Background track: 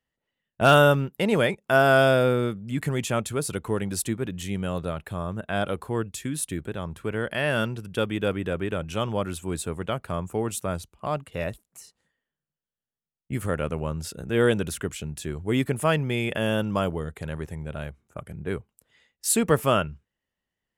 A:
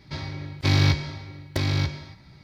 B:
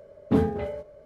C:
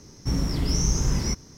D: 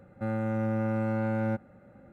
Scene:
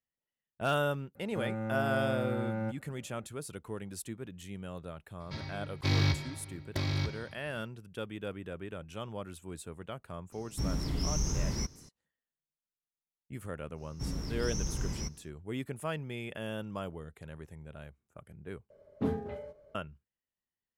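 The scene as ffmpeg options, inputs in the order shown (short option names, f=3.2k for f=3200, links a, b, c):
-filter_complex "[3:a]asplit=2[a][b];[0:a]volume=-13.5dB[c];[a]asoftclip=type=tanh:threshold=-11.5dB[d];[c]asplit=2[e][f];[e]atrim=end=18.704[g];[2:a]atrim=end=1.05,asetpts=PTS-STARTPTS,volume=-10dB[h];[f]atrim=start=19.746[i];[4:a]atrim=end=2.12,asetpts=PTS-STARTPTS,volume=-6dB,afade=t=in:d=0.004:c=hsin,afade=t=out:st=2.116:d=0.004:c=hsin,adelay=1150[j];[1:a]atrim=end=2.43,asetpts=PTS-STARTPTS,volume=-8dB,afade=t=in:d=0.004:c=hsin,afade=t=out:st=2.426:d=0.004:c=hsin,adelay=5200[k];[d]atrim=end=1.57,asetpts=PTS-STARTPTS,volume=-7.5dB,afade=t=in:d=0.004:c=hsin,afade=t=out:st=1.566:d=0.004:c=hsin,adelay=10320[l];[b]atrim=end=1.57,asetpts=PTS-STARTPTS,volume=-11.5dB,afade=t=in:d=0.1,afade=t=out:st=1.47:d=0.1,adelay=13740[m];[g][h]acrossfade=d=0.004:c1=hsin:c2=hsin[n];[n][i]acrossfade=d=0.004:c1=hsin:c2=hsin[o];[o][j][k][l][m]amix=inputs=5:normalize=0"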